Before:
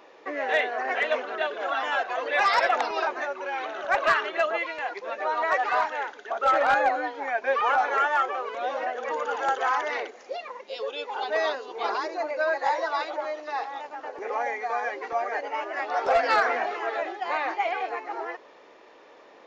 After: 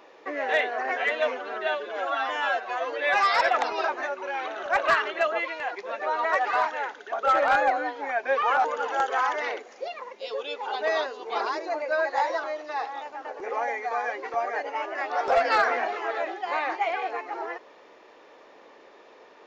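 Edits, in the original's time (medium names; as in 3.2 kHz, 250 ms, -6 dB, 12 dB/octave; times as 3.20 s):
0.91–2.54 s: stretch 1.5×
7.83–9.13 s: delete
12.92–13.22 s: delete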